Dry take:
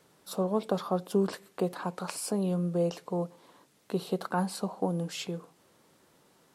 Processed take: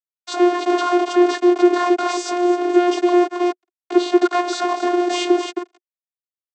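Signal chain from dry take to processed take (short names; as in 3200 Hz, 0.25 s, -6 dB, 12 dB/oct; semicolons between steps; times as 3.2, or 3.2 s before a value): low shelf 410 Hz -5 dB; thinning echo 0.272 s, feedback 35%, high-pass 240 Hz, level -10 dB; fuzz box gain 50 dB, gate -46 dBFS; vocoder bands 16, saw 354 Hz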